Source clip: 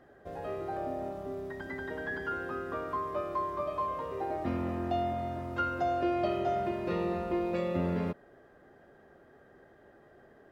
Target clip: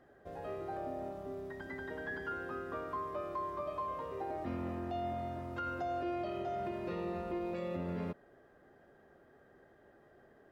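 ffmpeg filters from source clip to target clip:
ffmpeg -i in.wav -af "alimiter=level_in=1.5dB:limit=-24dB:level=0:latency=1:release=66,volume=-1.5dB,volume=-4.5dB" out.wav

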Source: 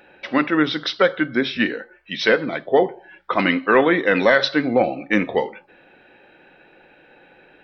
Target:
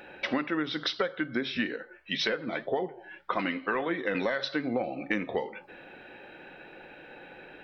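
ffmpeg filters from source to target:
ffmpeg -i in.wav -filter_complex "[0:a]asettb=1/sr,asplit=3[link_01][link_02][link_03];[link_01]atrim=end=1.764[link_04];[link_02]atrim=start=1.76:end=4.15,asetpts=PTS-STARTPTS,afade=type=in:duration=0.004:curve=qsin,afade=type=out:start_time=2.386:duration=0.004:curve=qsin,flanger=delay=4.8:depth=5.4:regen=50:speed=1.9:shape=triangular[link_05];[link_03]atrim=start=4.146[link_06];[link_04][link_05]acrossfade=duration=0.004:curve1=hsin:curve2=qsin[link_07];[link_07][link_06]acrossfade=duration=0.004:curve1=qsin:curve2=hsin,acompressor=threshold=-29dB:ratio=10,volume=2.5dB" out.wav

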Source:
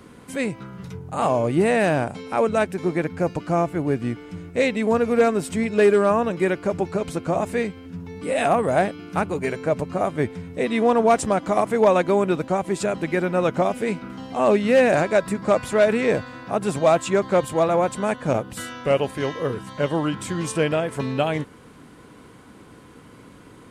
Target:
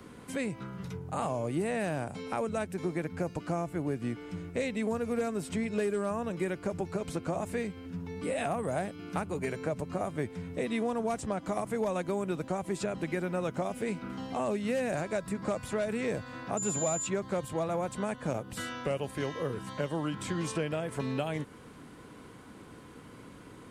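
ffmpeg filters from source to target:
ffmpeg -i in.wav -filter_complex "[0:a]acrossover=split=170|6400[link_01][link_02][link_03];[link_01]acompressor=threshold=-36dB:ratio=4[link_04];[link_02]acompressor=threshold=-28dB:ratio=4[link_05];[link_03]acompressor=threshold=-45dB:ratio=4[link_06];[link_04][link_05][link_06]amix=inputs=3:normalize=0,asettb=1/sr,asplit=3[link_07][link_08][link_09];[link_07]atrim=end=16.574[link_10];[link_08]atrim=start=16.57:end=17.07,asetpts=PTS-STARTPTS,afade=type=in:duration=0.004:curve=qsin,afade=type=out:start_time=0.496:duration=0.004:curve=qsin,aeval=exprs='val(0)+0.0355*sin(2*PI*7100*n/s)':channel_layout=same[link_11];[link_09]atrim=start=17.066[link_12];[link_10][link_11]acrossfade=duration=0.004:curve1=hsin:curve2=qsin[link_13];[link_13][link_12]acrossfade=duration=0.004:curve1=qsin:curve2=hsin,volume=-3.5dB" out.wav

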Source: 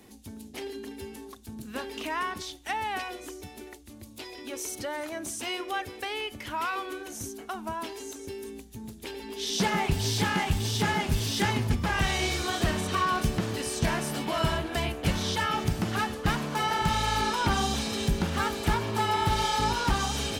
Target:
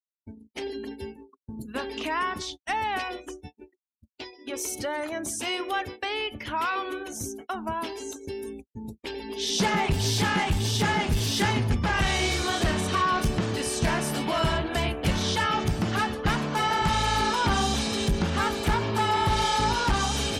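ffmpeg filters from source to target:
ffmpeg -i in.wav -af "asoftclip=type=tanh:threshold=-20.5dB,agate=range=-57dB:threshold=-41dB:ratio=16:detection=peak,afftdn=noise_reduction=31:noise_floor=-51,volume=4dB" out.wav

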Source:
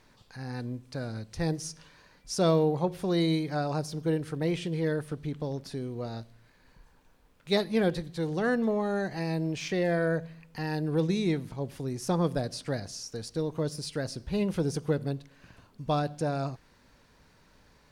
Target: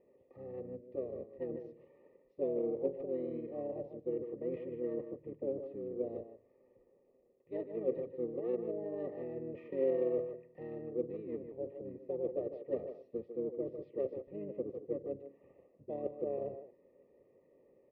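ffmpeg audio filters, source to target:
ffmpeg -i in.wav -filter_complex "[0:a]aemphasis=mode=reproduction:type=75fm,areverse,acompressor=threshold=-34dB:ratio=6,areverse,asplit=3[link_01][link_02][link_03];[link_01]bandpass=frequency=530:width_type=q:width=8,volume=0dB[link_04];[link_02]bandpass=frequency=1840:width_type=q:width=8,volume=-6dB[link_05];[link_03]bandpass=frequency=2480:width_type=q:width=8,volume=-9dB[link_06];[link_04][link_05][link_06]amix=inputs=3:normalize=0,asplit=4[link_07][link_08][link_09][link_10];[link_08]asetrate=22050,aresample=44100,atempo=2,volume=-14dB[link_11];[link_09]asetrate=33038,aresample=44100,atempo=1.33484,volume=-4dB[link_12];[link_10]asetrate=35002,aresample=44100,atempo=1.25992,volume=-17dB[link_13];[link_07][link_11][link_12][link_13]amix=inputs=4:normalize=0,asplit=2[link_14][link_15];[link_15]adelay=150,highpass=300,lowpass=3400,asoftclip=type=hard:threshold=-39dB,volume=-7dB[link_16];[link_14][link_16]amix=inputs=2:normalize=0,adynamicsmooth=sensitivity=2:basefreq=970,asuperstop=centerf=1500:order=12:qfactor=2.4,volume=8.5dB" out.wav

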